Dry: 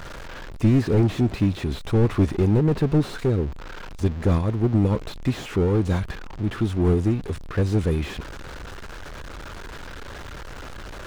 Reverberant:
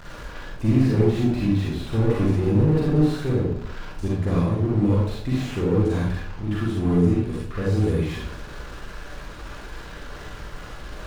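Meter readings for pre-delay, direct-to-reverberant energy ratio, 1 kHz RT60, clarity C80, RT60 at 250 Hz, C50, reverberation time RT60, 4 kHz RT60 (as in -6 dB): 37 ms, -5.0 dB, 0.55 s, 4.5 dB, 0.75 s, -1.0 dB, 0.60 s, 0.45 s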